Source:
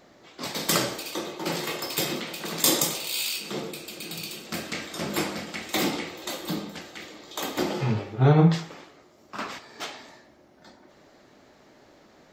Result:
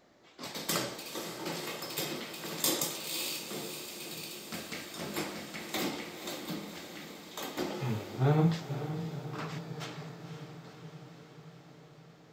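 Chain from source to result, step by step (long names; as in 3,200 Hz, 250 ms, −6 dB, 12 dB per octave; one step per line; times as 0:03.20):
feedback delay with all-pass diffusion 513 ms, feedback 68%, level −10 dB
level −8.5 dB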